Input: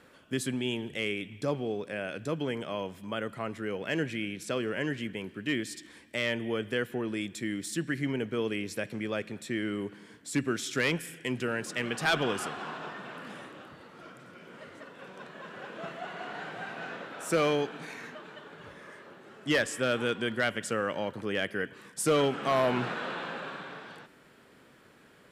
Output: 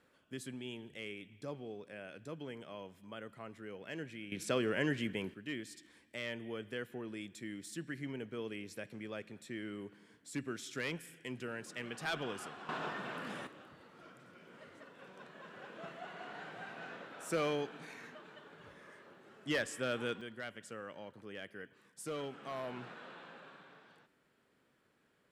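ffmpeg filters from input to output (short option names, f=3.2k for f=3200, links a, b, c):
-af "asetnsamples=n=441:p=0,asendcmd='4.32 volume volume -1.5dB;5.34 volume volume -11dB;12.69 volume volume 0dB;13.47 volume volume -8dB;20.21 volume volume -16dB',volume=-13dB"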